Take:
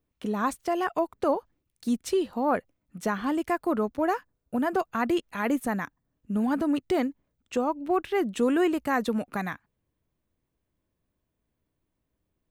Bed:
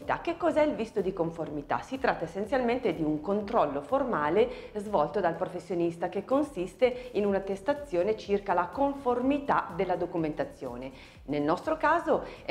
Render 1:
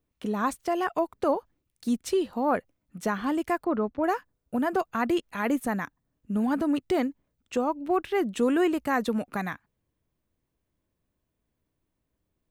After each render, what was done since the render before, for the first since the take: 3.64–4.04 air absorption 240 m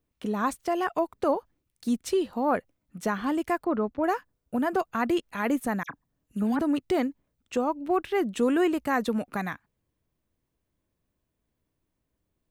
5.83–6.59 dispersion lows, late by 63 ms, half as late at 2800 Hz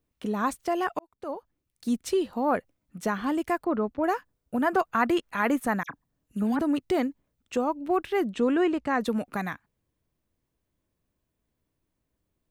0.99–1.95 fade in; 4.61–5.81 bell 1300 Hz +5.5 dB 1.7 oct; 8.33–9.01 air absorption 90 m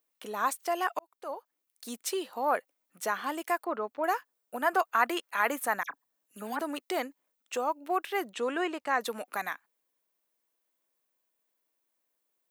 HPF 590 Hz 12 dB/oct; high shelf 10000 Hz +10.5 dB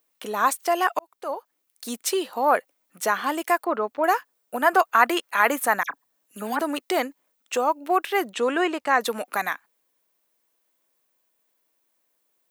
gain +8 dB

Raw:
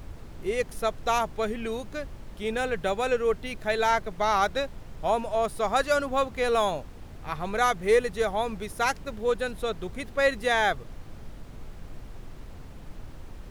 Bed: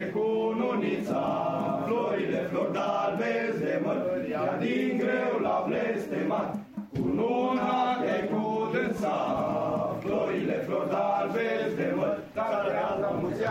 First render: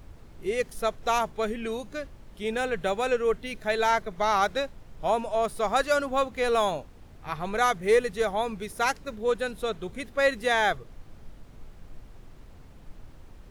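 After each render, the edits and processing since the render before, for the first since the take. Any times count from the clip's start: noise print and reduce 6 dB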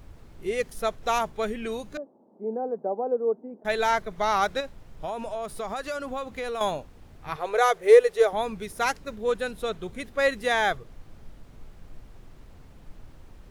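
1.97–3.65 elliptic band-pass 220–860 Hz, stop band 60 dB; 4.6–6.61 compressor, threshold -28 dBFS; 7.36–8.33 resonant low shelf 320 Hz -11.5 dB, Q 3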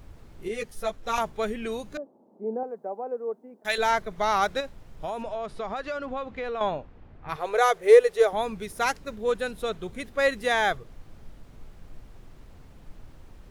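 0.48–1.18 ensemble effect; 2.63–3.78 tilt shelf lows -8.5 dB, about 1300 Hz; 5.22–7.28 LPF 5000 Hz -> 2100 Hz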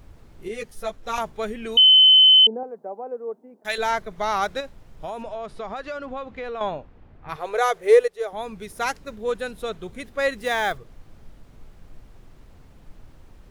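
1.77–2.47 bleep 3050 Hz -9 dBFS; 8.08–8.93 fade in equal-power, from -15 dB; 10.38–10.78 companded quantiser 6-bit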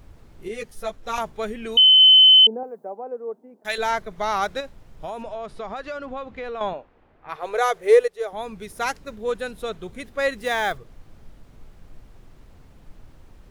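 2–2.93 high shelf 8400 Hz +11.5 dB; 6.73–7.43 tone controls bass -13 dB, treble -6 dB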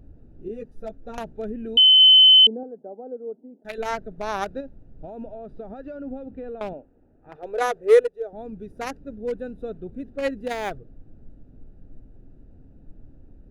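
Wiener smoothing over 41 samples; bell 270 Hz +7 dB 0.4 oct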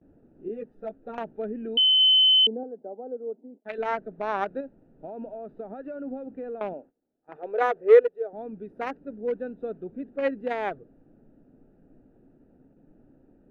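gate -48 dBFS, range -19 dB; three-band isolator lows -20 dB, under 170 Hz, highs -24 dB, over 2900 Hz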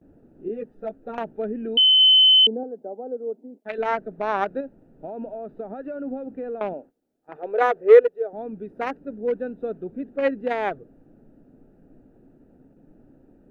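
gain +4 dB; limiter -3 dBFS, peak gain reduction 1 dB

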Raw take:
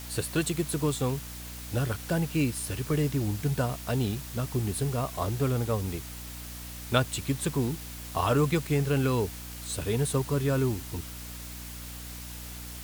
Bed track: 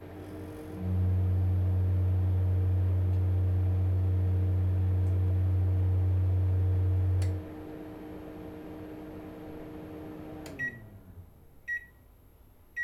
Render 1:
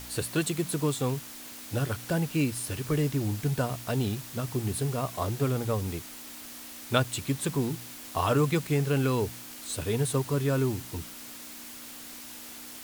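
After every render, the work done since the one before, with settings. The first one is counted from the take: de-hum 60 Hz, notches 3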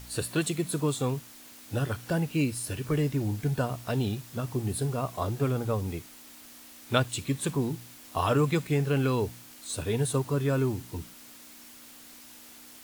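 noise print and reduce 6 dB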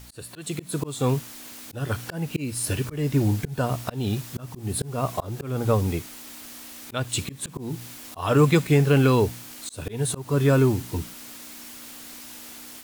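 auto swell 0.279 s; AGC gain up to 8 dB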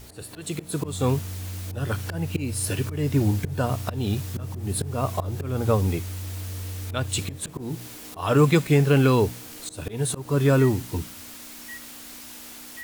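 add bed track -7 dB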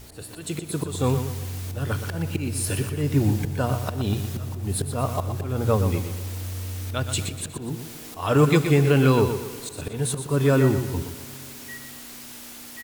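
on a send: feedback echo 0.121 s, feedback 39%, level -9 dB; on the sum: spring tank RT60 3.7 s, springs 45/59 ms, chirp 50 ms, DRR 18.5 dB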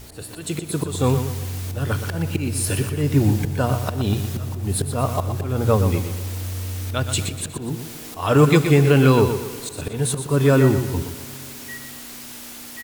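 gain +3.5 dB

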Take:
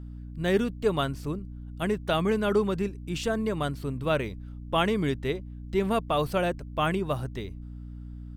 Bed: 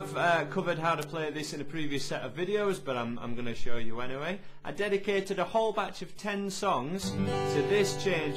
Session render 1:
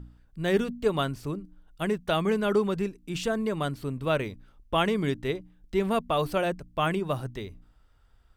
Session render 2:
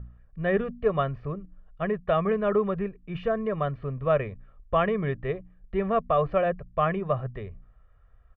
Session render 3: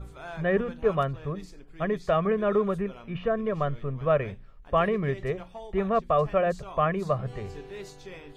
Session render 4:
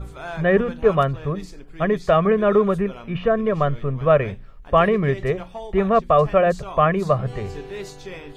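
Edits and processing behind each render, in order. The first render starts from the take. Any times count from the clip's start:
de-hum 60 Hz, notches 5
LPF 2200 Hz 24 dB/oct; comb 1.7 ms, depth 69%
add bed -14.5 dB
gain +7.5 dB

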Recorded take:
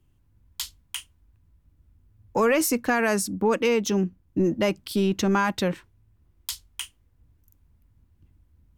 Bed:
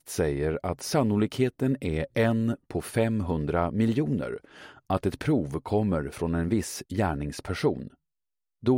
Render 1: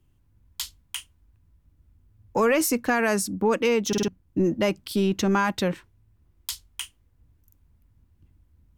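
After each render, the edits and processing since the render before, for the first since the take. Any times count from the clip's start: 3.88 stutter in place 0.05 s, 4 plays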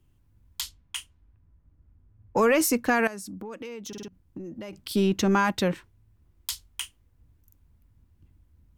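0.61–2.4 low-pass opened by the level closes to 1500 Hz, open at -33.5 dBFS; 3.07–4.73 compressor 12:1, threshold -35 dBFS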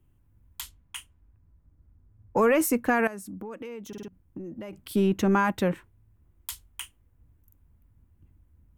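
bell 4800 Hz -11.5 dB 1.2 oct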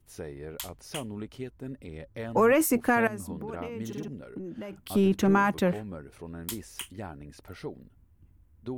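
add bed -13.5 dB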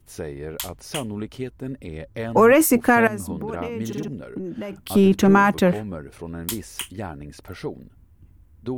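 gain +7.5 dB

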